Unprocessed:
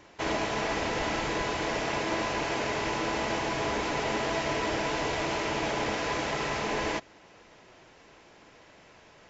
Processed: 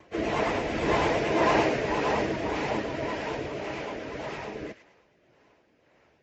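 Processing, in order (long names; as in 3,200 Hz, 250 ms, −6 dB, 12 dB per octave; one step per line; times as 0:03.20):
spectral envelope exaggerated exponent 1.5
source passing by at 0:02.08, 7 m/s, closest 5.2 metres
high-pass filter 46 Hz 12 dB per octave
in parallel at +1.5 dB: speech leveller within 3 dB
on the sum: rotating-speaker cabinet horn 1.2 Hz
pitch vibrato 5.9 Hz 72 cents
time stretch by phase vocoder 0.67×
on a send: delay with a high-pass on its return 106 ms, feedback 35%, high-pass 1,600 Hz, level −9 dB
on the sum: level +7 dB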